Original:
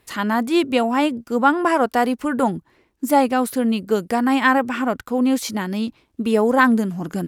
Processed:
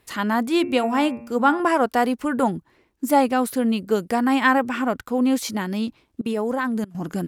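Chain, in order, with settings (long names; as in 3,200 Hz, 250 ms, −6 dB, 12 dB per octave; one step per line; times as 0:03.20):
0:00.51–0:01.60: hum removal 117.3 Hz, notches 23
0:06.21–0:06.95: output level in coarse steps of 22 dB
level −1.5 dB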